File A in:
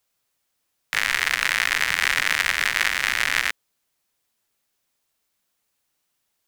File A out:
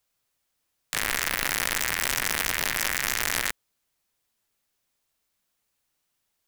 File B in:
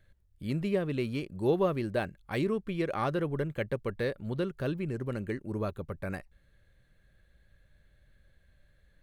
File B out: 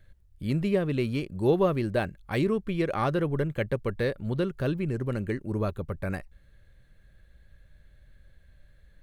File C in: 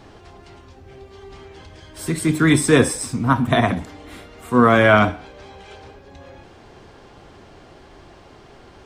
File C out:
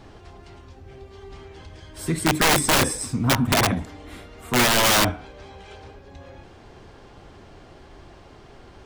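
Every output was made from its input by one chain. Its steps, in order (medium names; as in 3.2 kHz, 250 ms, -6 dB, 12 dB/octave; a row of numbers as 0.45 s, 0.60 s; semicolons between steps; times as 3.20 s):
bass shelf 98 Hz +6 dB; integer overflow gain 9.5 dB; peak normalisation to -12 dBFS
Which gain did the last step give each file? -2.5 dB, +3.5 dB, -2.5 dB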